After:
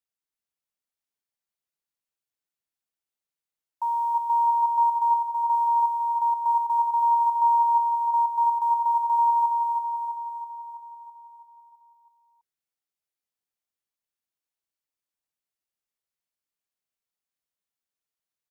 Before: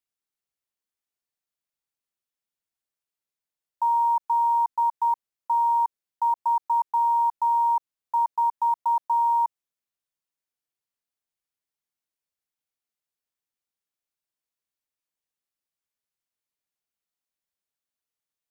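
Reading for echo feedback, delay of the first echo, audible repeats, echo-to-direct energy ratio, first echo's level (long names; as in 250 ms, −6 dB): 60%, 328 ms, 7, −2.0 dB, −4.0 dB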